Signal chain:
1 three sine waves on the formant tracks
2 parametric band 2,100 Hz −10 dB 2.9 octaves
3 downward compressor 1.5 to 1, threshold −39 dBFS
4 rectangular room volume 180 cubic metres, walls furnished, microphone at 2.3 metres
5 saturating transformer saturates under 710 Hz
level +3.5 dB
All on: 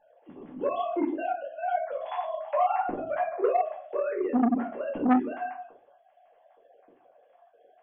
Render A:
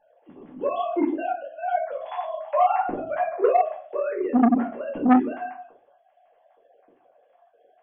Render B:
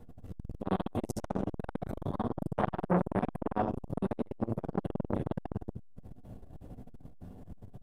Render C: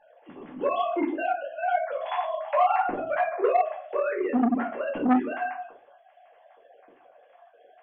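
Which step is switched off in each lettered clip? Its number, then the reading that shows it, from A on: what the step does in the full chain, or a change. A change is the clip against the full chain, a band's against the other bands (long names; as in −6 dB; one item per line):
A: 3, average gain reduction 2.5 dB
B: 1, 125 Hz band +24.5 dB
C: 2, 2 kHz band +5.0 dB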